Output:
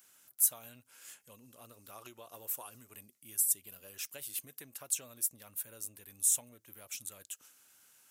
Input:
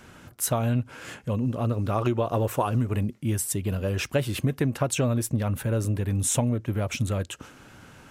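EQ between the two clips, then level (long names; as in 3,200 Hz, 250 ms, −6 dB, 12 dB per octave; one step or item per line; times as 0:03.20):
first-order pre-emphasis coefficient 0.9
RIAA equalisation recording
high-shelf EQ 2,000 Hz −9 dB
−5.5 dB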